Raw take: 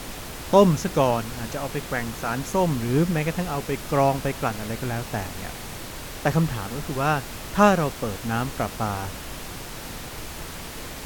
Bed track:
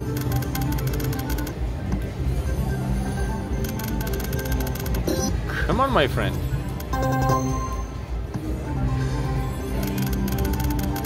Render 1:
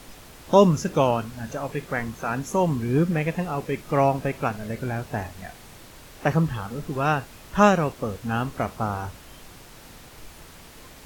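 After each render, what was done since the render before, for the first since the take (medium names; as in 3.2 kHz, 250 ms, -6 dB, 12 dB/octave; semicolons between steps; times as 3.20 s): noise print and reduce 10 dB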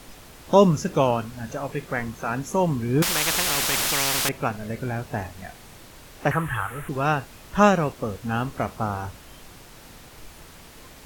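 3.02–4.29 s: spectrum-flattening compressor 10:1; 6.31–6.89 s: FFT filter 140 Hz 0 dB, 200 Hz -17 dB, 300 Hz -4 dB, 520 Hz -3 dB, 1.2 kHz +8 dB, 1.7 kHz +13 dB, 3.1 kHz +3 dB, 4.8 kHz -15 dB, 10 kHz +10 dB, 16 kHz +2 dB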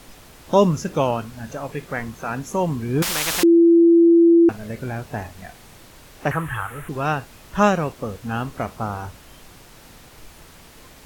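3.43–4.49 s: bleep 337 Hz -9 dBFS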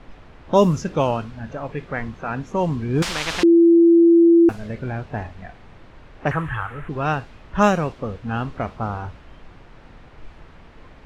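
bass shelf 67 Hz +7 dB; level-controlled noise filter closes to 2.1 kHz, open at -10.5 dBFS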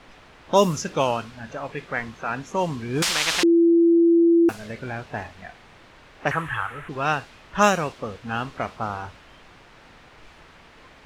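tilt EQ +2.5 dB/octave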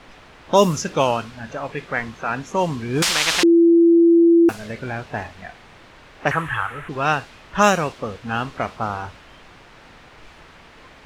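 trim +3.5 dB; peak limiter -2 dBFS, peak gain reduction 2 dB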